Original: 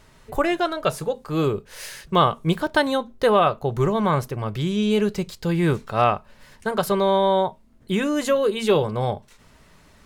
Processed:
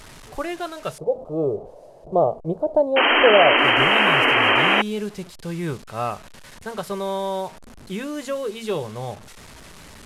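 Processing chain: one-bit delta coder 64 kbps, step -30 dBFS; 0.98–3.58 s: FFT filter 240 Hz 0 dB, 660 Hz +14 dB, 1.7 kHz -27 dB, 3.9 kHz -24 dB; 2.96–4.82 s: painted sound noise 240–3200 Hz -10 dBFS; trim -7 dB

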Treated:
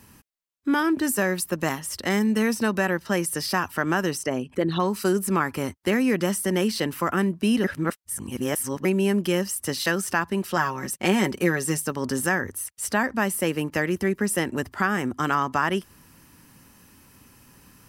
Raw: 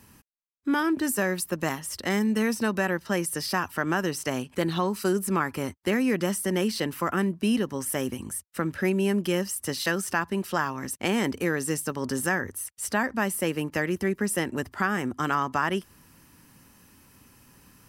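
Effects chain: 4.17–4.80 s: resonances exaggerated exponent 1.5; 7.64–8.85 s: reverse; 10.56–11.82 s: comb 5.4 ms, depth 51%; trim +2.5 dB

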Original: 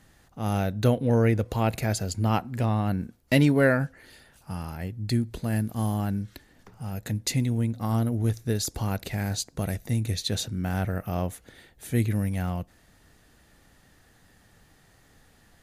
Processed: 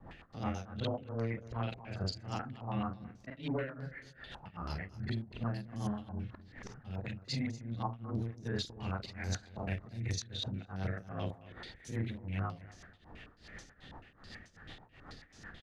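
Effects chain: short-time spectra conjugated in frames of 105 ms; compression 2:1, threshold -52 dBFS, peak gain reduction 18 dB; peak limiter -36 dBFS, peak gain reduction 7 dB; rotary cabinet horn 8 Hz; saturation -37.5 dBFS, distortion -22 dB; tremolo triangle 2.6 Hz, depth 100%; on a send: feedback delay 238 ms, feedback 23%, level -17 dB; on the sum: step-sequenced low-pass 9.2 Hz 920–6000 Hz; trim +13 dB

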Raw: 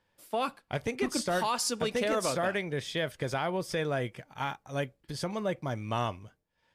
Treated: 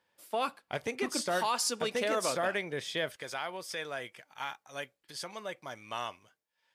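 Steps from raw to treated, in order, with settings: high-pass 370 Hz 6 dB/octave, from 3.16 s 1.4 kHz

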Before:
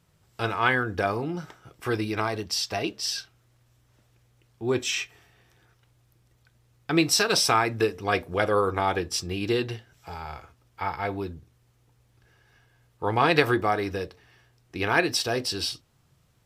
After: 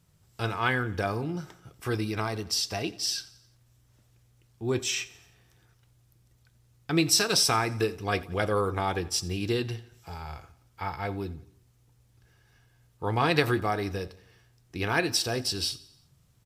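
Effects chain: tone controls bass +6 dB, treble +6 dB; on a send: feedback delay 88 ms, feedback 51%, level -20 dB; on the sum: trim -4.5 dB

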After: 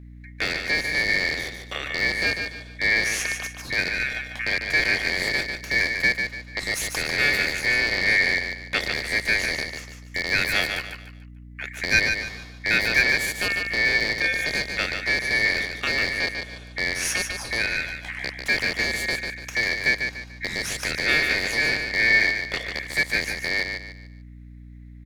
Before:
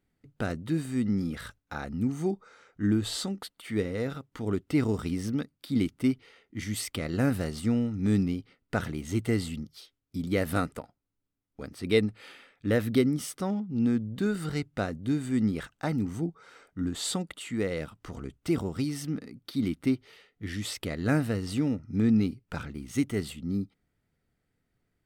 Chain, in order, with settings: rattle on loud lows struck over -32 dBFS, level -20 dBFS; ring modulator 2 kHz; dynamic bell 1.1 kHz, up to -5 dB, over -40 dBFS, Q 0.74; feedback delay 146 ms, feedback 33%, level -6 dB; hum 60 Hz, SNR 17 dB; trim +8.5 dB

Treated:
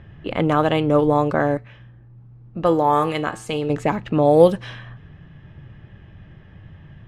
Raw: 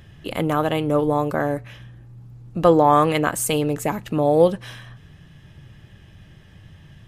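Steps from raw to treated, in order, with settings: level-controlled noise filter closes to 1.9 kHz, open at -11 dBFS; 1.57–3.70 s: feedback comb 110 Hz, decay 0.39 s, harmonics all, mix 60%; trim +3 dB

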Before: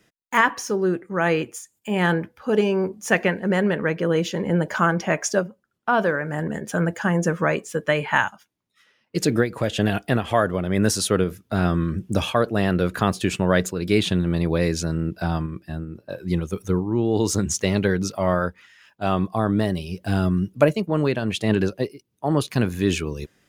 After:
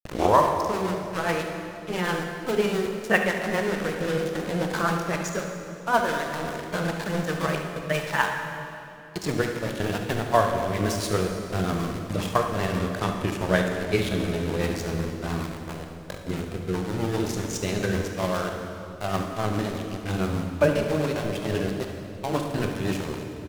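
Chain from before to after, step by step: tape start-up on the opening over 0.65 s; fifteen-band graphic EQ 250 Hz -4 dB, 1 kHz +4 dB, 10 kHz -4 dB; in parallel at -2 dB: level held to a coarse grid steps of 17 dB; on the sum: small samples zeroed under -21 dBFS; granulator, spray 17 ms, pitch spread up and down by 0 st; rotary cabinet horn 7.5 Hz; delay 72 ms -12.5 dB; on a send at -3.5 dB: reverberation RT60 2.8 s, pre-delay 18 ms; on the sum: trim -4 dB

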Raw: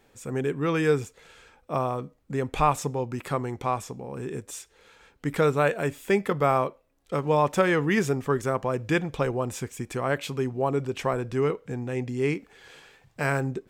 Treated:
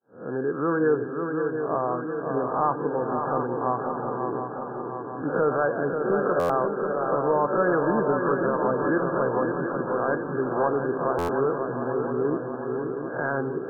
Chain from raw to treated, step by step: reverse spectral sustain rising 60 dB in 0.44 s; expander -48 dBFS; high-pass 210 Hz 12 dB/octave; in parallel at 0 dB: peak limiter -15.5 dBFS, peak gain reduction 7 dB; on the sum: saturation -7 dBFS, distortion -23 dB; brick-wall FIR low-pass 1.7 kHz; shuffle delay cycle 718 ms, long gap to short 3:1, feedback 60%, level -6 dB; on a send at -14 dB: reverberation RT60 0.90 s, pre-delay 3 ms; on the sum: buffer glitch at 6.39/11.18 s, samples 512, times 8; trim -4.5 dB

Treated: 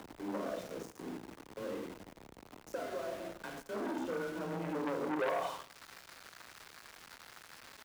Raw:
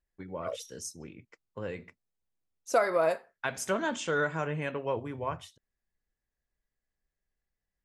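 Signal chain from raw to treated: RIAA curve recording; band-stop 1 kHz, Q 19; reverberation RT60 0.70 s, pre-delay 14 ms, DRR -1.5 dB; compression 6:1, threshold -30 dBFS, peak gain reduction 13.5 dB; added noise pink -50 dBFS; band-pass sweep 280 Hz -> 1.5 kHz, 5.10–5.71 s; upward compressor, threshold -52 dBFS; 1.08–3.73 s: dynamic bell 400 Hz, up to -4 dB, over -54 dBFS, Q 0.71; small samples zeroed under -53 dBFS; frequency shift +18 Hz; feedback delay 89 ms, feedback 47%, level -19.5 dB; transformer saturation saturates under 1.4 kHz; trim +9 dB

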